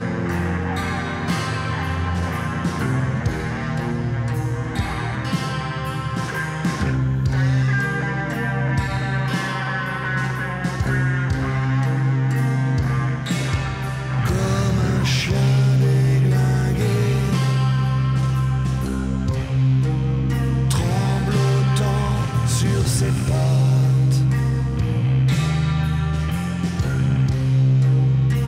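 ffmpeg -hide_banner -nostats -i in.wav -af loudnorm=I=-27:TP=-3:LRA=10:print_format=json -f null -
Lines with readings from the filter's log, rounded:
"input_i" : "-20.5",
"input_tp" : "-10.7",
"input_lra" : "4.9",
"input_thresh" : "-30.5",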